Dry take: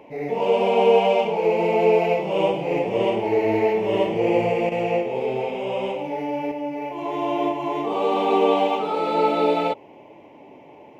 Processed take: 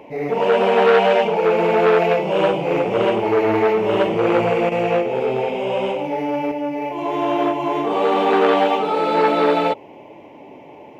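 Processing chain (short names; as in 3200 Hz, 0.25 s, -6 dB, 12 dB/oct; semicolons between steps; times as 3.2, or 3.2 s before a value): core saturation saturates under 1100 Hz; gain +5 dB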